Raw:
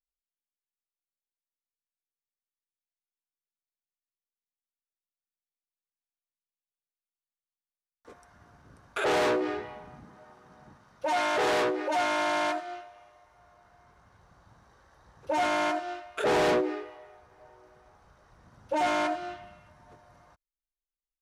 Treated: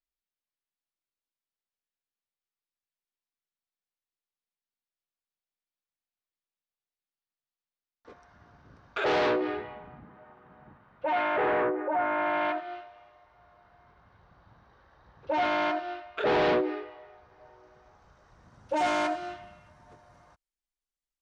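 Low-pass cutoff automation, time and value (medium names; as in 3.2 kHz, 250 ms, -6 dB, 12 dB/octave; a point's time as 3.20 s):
low-pass 24 dB/octave
9.08 s 5.2 kHz
10.02 s 2.9 kHz
11.16 s 2.9 kHz
11.90 s 1.6 kHz
12.84 s 4.3 kHz
16.89 s 4.3 kHz
18.86 s 10 kHz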